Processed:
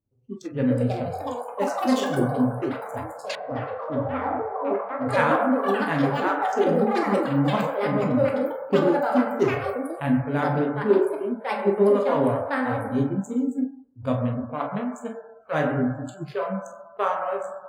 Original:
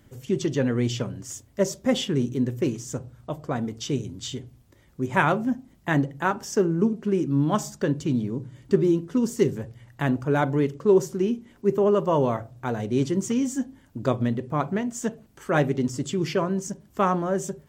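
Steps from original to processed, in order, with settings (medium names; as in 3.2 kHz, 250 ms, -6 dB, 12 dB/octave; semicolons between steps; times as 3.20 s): local Wiener filter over 25 samples; ever faster or slower copies 490 ms, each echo +6 st, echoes 3; reverberation RT60 1.6 s, pre-delay 14 ms, DRR -0.5 dB; spectral noise reduction 25 dB; 3.35–5.09 s: low-pass 1 kHz 12 dB/octave; trim -3 dB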